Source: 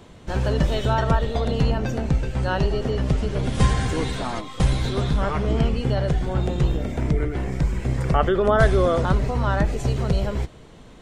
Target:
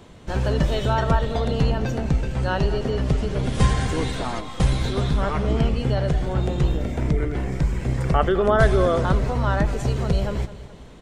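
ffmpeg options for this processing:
-af "aecho=1:1:210|420|630|840:0.168|0.0789|0.0371|0.0174"

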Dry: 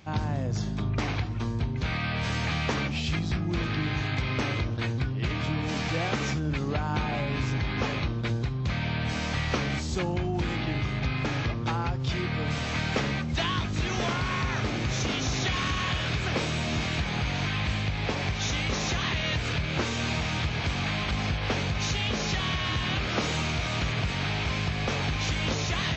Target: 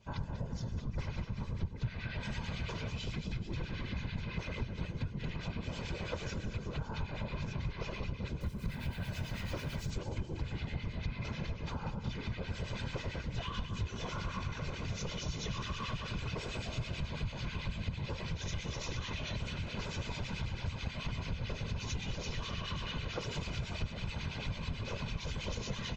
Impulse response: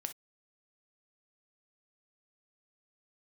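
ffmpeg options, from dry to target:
-filter_complex "[0:a]aecho=1:1:192|384|576|768|960|1152:0.398|0.215|0.116|0.0627|0.0339|0.0183,asettb=1/sr,asplit=3[s0][s1][s2];[s0]atrim=end=8.414[s3];[s1]atrim=start=8.41:end=9.9,asetpts=PTS-STARTPTS,afade=t=in:d=0.004:c=qsin,afade=t=out:st=1.486:d=0.004:c=qsin,acrusher=bits=8:dc=4:mix=0:aa=0.000001[s4];[s2]atrim=start=9.896[s5];[s3][s4]acrossfade=d=0.004:c1=hsin:c2=qsin[s6];[s6][s5]acrossfade=d=0.004:c1=qsin:c2=hsin,equalizer=f=62:t=o:w=0.83:g=8.5,aecho=1:1:2:0.91,afftfilt=real='hypot(re,im)*cos(2*PI*random(0))':imag='hypot(re,im)*sin(2*PI*random(1))':win_size=512:overlap=0.75,acrossover=split=1500[s7][s8];[s7]aeval=exprs='val(0)*(1-0.7/2+0.7/2*cos(2*PI*9.1*n/s))':c=same[s9];[s8]aeval=exprs='val(0)*(1-0.7/2-0.7/2*cos(2*PI*9.1*n/s))':c=same[s10];[s9][s10]amix=inputs=2:normalize=0,acompressor=threshold=0.0251:ratio=2.5,adynamicequalizer=threshold=0.00178:dfrequency=1800:dqfactor=2.5:tfrequency=1800:tqfactor=2.5:attack=5:release=100:ratio=0.375:range=2:mode=cutabove:tftype=bell,volume=0.708"

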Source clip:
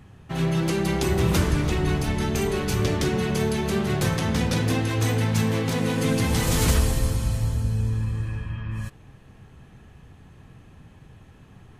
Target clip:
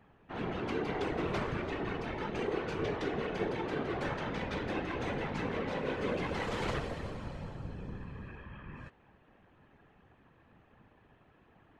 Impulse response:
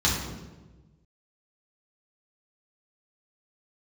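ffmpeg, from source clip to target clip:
-af "bass=f=250:g=-13,treble=f=4000:g=-9,afftfilt=real='hypot(re,im)*cos(2*PI*random(0))':imag='hypot(re,im)*sin(2*PI*random(1))':win_size=512:overlap=0.75,adynamicsmooth=sensitivity=1.5:basefreq=3800"

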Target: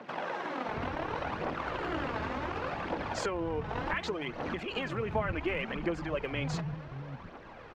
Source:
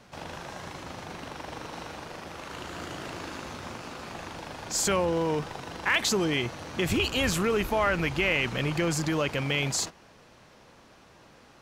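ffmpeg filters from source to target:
-filter_complex "[0:a]lowpass=2200,acompressor=threshold=0.0141:ratio=10,atempo=1.5,aphaser=in_gain=1:out_gain=1:delay=4.8:decay=0.47:speed=0.68:type=triangular,acrossover=split=200[s0][s1];[s0]adelay=680[s2];[s2][s1]amix=inputs=2:normalize=0,volume=2.24"

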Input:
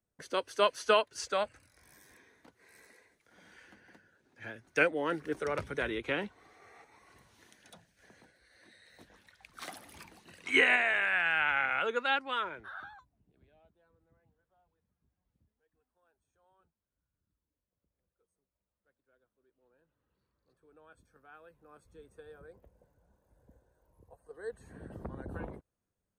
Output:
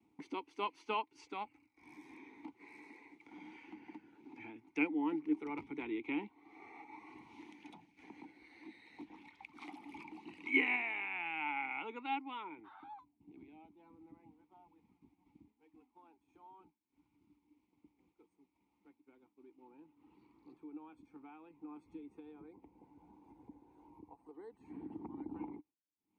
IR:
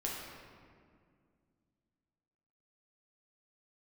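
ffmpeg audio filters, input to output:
-filter_complex "[0:a]acompressor=mode=upward:threshold=0.0178:ratio=2.5,agate=range=0.0224:threshold=0.00251:ratio=3:detection=peak,asplit=3[s0][s1][s2];[s0]bandpass=f=300:t=q:w=8,volume=1[s3];[s1]bandpass=f=870:t=q:w=8,volume=0.501[s4];[s2]bandpass=f=2240:t=q:w=8,volume=0.355[s5];[s3][s4][s5]amix=inputs=3:normalize=0,volume=2.11"

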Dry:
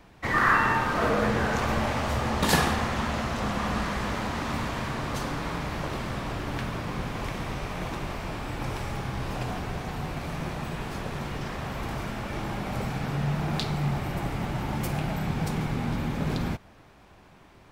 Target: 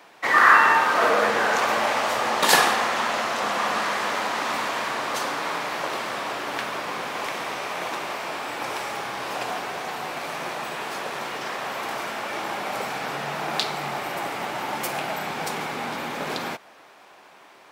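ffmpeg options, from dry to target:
-af "highpass=510,volume=2.37"

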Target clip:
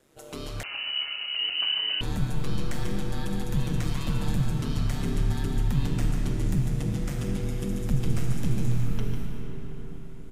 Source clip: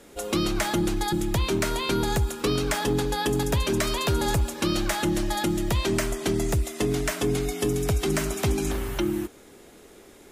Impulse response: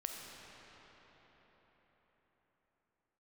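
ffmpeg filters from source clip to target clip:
-filter_complex "[0:a]asubboost=boost=6:cutoff=170,aeval=exprs='val(0)*sin(2*PI*71*n/s)':c=same,aecho=1:1:148:0.422[s0];[1:a]atrim=start_sample=2205[s1];[s0][s1]afir=irnorm=-1:irlink=0,asettb=1/sr,asplit=3[s2][s3][s4];[s2]atrim=end=0.634[s5];[s3]atrim=start=0.63:end=2.01,asetpts=PTS-STARTPTS,afade=t=in:d=0.004:c=qsin,afade=t=out:st=1.376:d=0.004:c=qsin,lowpass=f=2600:t=q:w=0.5098,lowpass=f=2600:t=q:w=0.6013,lowpass=f=2600:t=q:w=0.9,lowpass=f=2600:t=q:w=2.563,afreqshift=-3000[s6];[s4]atrim=start=2.006[s7];[s5][s6]acrossfade=d=0.004:c1=hsin:c2=qsin[s8];[s8][s7]acrossfade=d=0.004:c1=qsin:c2=hsin,volume=0.422"

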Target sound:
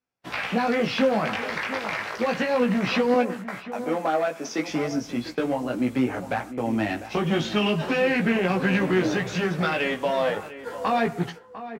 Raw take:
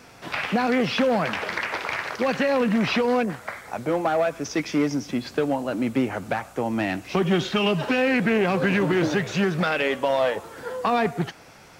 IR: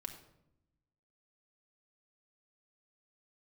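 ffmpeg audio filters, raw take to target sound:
-filter_complex "[0:a]asettb=1/sr,asplit=3[s0][s1][s2];[s0]atrim=end=3.144[s3];[s1]atrim=start=3.14:end=4.68,asetpts=PTS-STARTPTS,afade=t=in:d=0.004:c=qsin,afade=t=out:st=1.536:d=0.004:c=qsin,highpass=f=190:w=0.5412,highpass=f=190:w=1.3066[s4];[s2]atrim=start=4.676[s5];[s3][s4]acrossfade=d=0.004:c1=hsin:c2=qsin[s6];[s6][s5]acrossfade=d=0.004:c1=qsin:c2=hsin,agate=range=0.0112:threshold=0.0141:ratio=16:detection=peak,flanger=delay=16:depth=3.3:speed=0.34,asplit=2[s7][s8];[s8]adelay=699.7,volume=0.224,highshelf=f=4000:g=-15.7[s9];[s7][s9]amix=inputs=2:normalize=0,asplit=2[s10][s11];[1:a]atrim=start_sample=2205,atrim=end_sample=6174[s12];[s11][s12]afir=irnorm=-1:irlink=0,volume=0.316[s13];[s10][s13]amix=inputs=2:normalize=0"

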